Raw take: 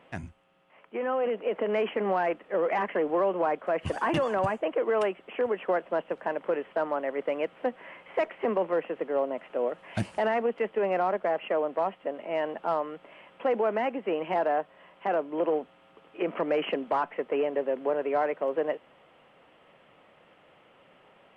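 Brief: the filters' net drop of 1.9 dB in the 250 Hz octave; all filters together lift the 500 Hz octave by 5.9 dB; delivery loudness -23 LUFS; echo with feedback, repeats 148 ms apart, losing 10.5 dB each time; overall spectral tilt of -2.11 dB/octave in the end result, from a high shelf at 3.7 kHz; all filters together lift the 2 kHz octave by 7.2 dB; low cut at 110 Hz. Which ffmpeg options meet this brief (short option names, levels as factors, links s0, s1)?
-af "highpass=110,equalizer=f=250:t=o:g=-7,equalizer=f=500:t=o:g=8,equalizer=f=2000:t=o:g=7,highshelf=f=3700:g=6,aecho=1:1:148|296|444:0.299|0.0896|0.0269,volume=1.06"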